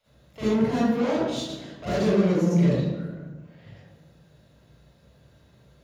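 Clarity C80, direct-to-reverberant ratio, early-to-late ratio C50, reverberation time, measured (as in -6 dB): -0.5 dB, -11.5 dB, -5.0 dB, 1.2 s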